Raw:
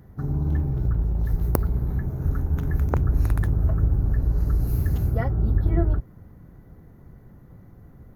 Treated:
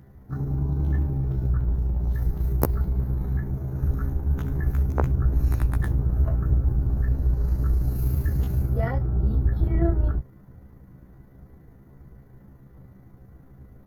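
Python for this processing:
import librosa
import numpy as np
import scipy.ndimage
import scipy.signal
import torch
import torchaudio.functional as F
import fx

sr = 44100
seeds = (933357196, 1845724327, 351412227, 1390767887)

y = fx.stretch_grains(x, sr, factor=1.7, grain_ms=73.0)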